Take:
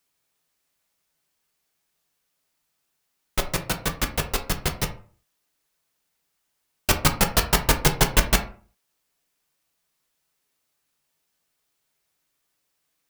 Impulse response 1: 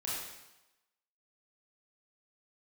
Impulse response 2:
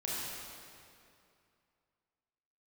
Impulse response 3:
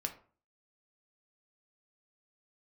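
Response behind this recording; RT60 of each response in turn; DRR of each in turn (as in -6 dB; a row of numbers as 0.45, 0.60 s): 3; 0.95, 2.5, 0.40 s; -7.5, -7.0, 4.0 dB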